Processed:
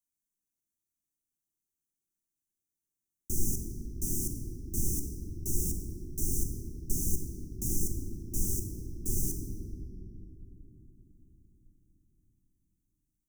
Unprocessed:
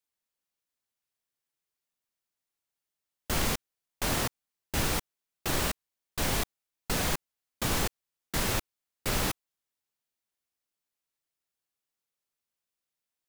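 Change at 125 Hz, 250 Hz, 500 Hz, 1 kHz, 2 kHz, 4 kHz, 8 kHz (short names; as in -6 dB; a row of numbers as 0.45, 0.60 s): +0.5 dB, -1.5 dB, -9.5 dB, under -40 dB, under -40 dB, -18.5 dB, 0.0 dB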